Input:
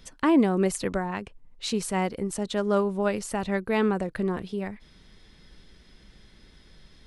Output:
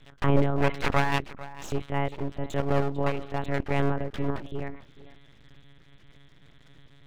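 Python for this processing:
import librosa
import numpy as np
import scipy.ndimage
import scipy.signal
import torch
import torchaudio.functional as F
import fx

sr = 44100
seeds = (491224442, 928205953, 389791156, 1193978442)

p1 = fx.lpc_monotone(x, sr, seeds[0], pitch_hz=140.0, order=8)
p2 = fx.band_shelf(p1, sr, hz=1200.0, db=11.5, octaves=2.5, at=(0.62, 1.18), fade=0.02)
p3 = p2 + fx.echo_single(p2, sr, ms=447, db=-17.5, dry=0)
y = np.abs(p3)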